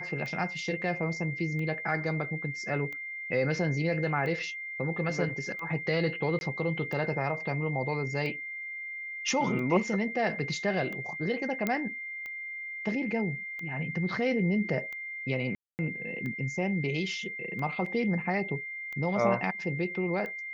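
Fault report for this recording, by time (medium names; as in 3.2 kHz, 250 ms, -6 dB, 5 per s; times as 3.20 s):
tick 45 rpm -27 dBFS
whine 2.1 kHz -36 dBFS
6.39–6.41 s: dropout 21 ms
11.67 s: pop -15 dBFS
15.55–15.79 s: dropout 239 ms
17.86 s: dropout 3.7 ms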